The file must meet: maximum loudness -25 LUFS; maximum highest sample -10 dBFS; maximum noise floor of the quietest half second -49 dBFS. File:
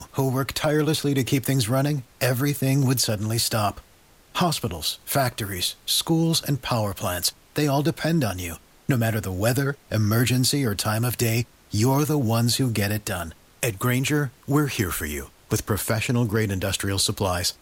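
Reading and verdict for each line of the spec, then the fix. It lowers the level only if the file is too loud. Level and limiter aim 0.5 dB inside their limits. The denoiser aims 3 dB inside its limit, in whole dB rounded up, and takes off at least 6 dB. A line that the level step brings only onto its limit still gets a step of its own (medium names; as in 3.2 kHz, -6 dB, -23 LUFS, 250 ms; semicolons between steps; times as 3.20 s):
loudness -23.5 LUFS: fail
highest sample -9.5 dBFS: fail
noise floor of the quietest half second -54 dBFS: pass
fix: trim -2 dB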